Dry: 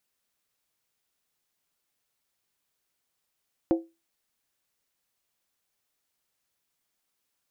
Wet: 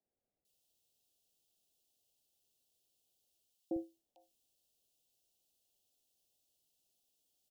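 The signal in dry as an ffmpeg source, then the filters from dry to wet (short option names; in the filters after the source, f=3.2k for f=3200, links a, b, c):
-f lavfi -i "aevalsrc='0.158*pow(10,-3*t/0.25)*sin(2*PI*331*t)+0.0668*pow(10,-3*t/0.198)*sin(2*PI*527.6*t)+0.0282*pow(10,-3*t/0.171)*sin(2*PI*707*t)+0.0119*pow(10,-3*t/0.165)*sin(2*PI*760*t)+0.00501*pow(10,-3*t/0.153)*sin(2*PI*878.1*t)':d=0.63:s=44100"
-filter_complex "[0:a]areverse,acompressor=threshold=-36dB:ratio=6,areverse,asuperstop=centerf=1500:order=12:qfactor=0.79,acrossover=split=170|1100[a][b][c];[a]adelay=50[d];[c]adelay=450[e];[d][b][e]amix=inputs=3:normalize=0"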